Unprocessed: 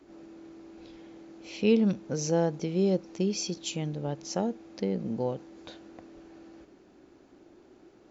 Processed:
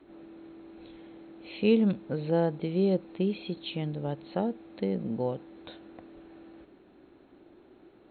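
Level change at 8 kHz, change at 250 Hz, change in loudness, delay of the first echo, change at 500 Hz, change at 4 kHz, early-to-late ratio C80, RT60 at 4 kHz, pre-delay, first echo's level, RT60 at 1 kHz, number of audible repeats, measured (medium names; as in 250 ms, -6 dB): no reading, 0.0 dB, 0.0 dB, no echo, 0.0 dB, -3.0 dB, no reverb, no reverb, no reverb, no echo, no reverb, no echo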